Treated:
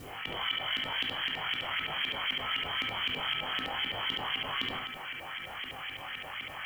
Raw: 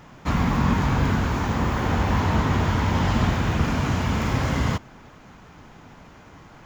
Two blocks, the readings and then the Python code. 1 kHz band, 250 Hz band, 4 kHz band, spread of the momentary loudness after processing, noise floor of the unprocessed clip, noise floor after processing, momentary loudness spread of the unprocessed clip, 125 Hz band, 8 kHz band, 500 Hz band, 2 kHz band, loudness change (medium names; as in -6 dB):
-11.0 dB, -23.5 dB, +6.0 dB, 8 LU, -48 dBFS, -44 dBFS, 3 LU, -28.5 dB, under -15 dB, -14.5 dB, -2.5 dB, -9.5 dB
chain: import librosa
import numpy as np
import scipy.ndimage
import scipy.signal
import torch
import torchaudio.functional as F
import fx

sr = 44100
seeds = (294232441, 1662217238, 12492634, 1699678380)

y = fx.doubler(x, sr, ms=22.0, db=-3.0)
y = fx.freq_invert(y, sr, carrier_hz=3200)
y = fx.low_shelf_res(y, sr, hz=180.0, db=8.5, q=1.5)
y = fx.filter_lfo_lowpass(y, sr, shape='saw_up', hz=3.9, low_hz=260.0, high_hz=2400.0, q=1.9)
y = fx.hum_notches(y, sr, base_hz=60, count=6)
y = fx.quant_companded(y, sr, bits=8)
y = fx.tilt_eq(y, sr, slope=2.5)
y = fx.comb_fb(y, sr, f0_hz=260.0, decay_s=0.33, harmonics='odd', damping=0.0, mix_pct=70)
y = y + 10.0 ** (-9.5 / 20.0) * np.pad(y, (int(71 * sr / 1000.0), 0))[:len(y)]
y = fx.env_flatten(y, sr, amount_pct=70)
y = F.gain(torch.from_numpy(y), -7.0).numpy()